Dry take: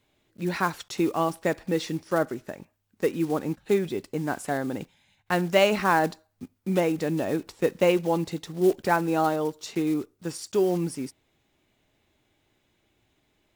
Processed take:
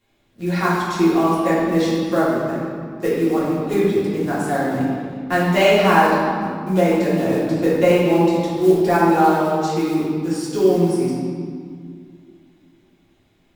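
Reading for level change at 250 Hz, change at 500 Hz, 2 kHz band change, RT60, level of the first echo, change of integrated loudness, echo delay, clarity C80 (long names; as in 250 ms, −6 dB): +9.5 dB, +8.0 dB, +7.0 dB, 2.0 s, no echo audible, +8.0 dB, no echo audible, 1.0 dB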